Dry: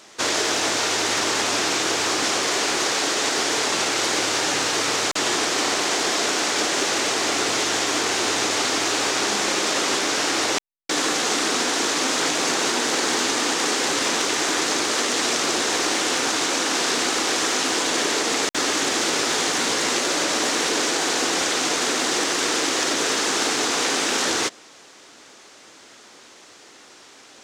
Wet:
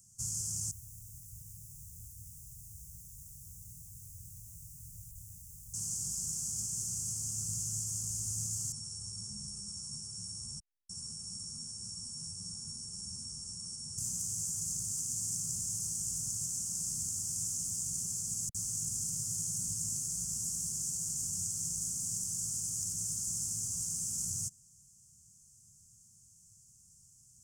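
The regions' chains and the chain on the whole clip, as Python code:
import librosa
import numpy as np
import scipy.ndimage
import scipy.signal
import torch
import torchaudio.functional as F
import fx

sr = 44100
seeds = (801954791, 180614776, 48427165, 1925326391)

y = fx.chain(x, sr, fx.clip_1bit(),
    fx.highpass(hz=63.0, slope=12),
    fx.tone_stack(knobs='10-0-1'), at=(0.71, 5.74))
y = fx.chain(y, sr, fx.sample_sort(block=8),
    fx.brickwall_lowpass(high_hz=9800.0),
    fx.ensemble(), at=(8.72, 13.98))
y = scipy.signal.sosfilt(scipy.signal.cheby2(4, 40, [280.0, 4000.0], 'bandstop', fs=sr, output='sos'), y)
y = fx.low_shelf(y, sr, hz=230.0, db=9.0)
y = F.gain(torch.from_numpy(y), -3.5).numpy()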